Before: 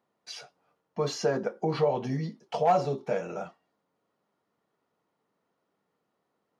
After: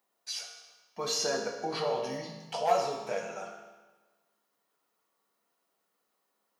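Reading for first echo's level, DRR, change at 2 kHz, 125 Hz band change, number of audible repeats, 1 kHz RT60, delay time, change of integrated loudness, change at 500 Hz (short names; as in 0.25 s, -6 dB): none, 1.0 dB, +1.0 dB, -14.0 dB, none, 1.3 s, none, -3.5 dB, -4.0 dB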